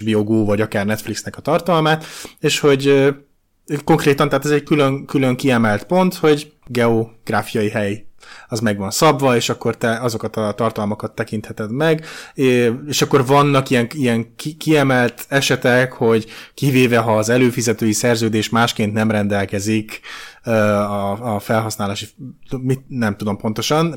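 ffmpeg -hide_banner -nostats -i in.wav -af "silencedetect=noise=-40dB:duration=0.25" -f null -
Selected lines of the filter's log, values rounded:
silence_start: 3.22
silence_end: 3.68 | silence_duration: 0.47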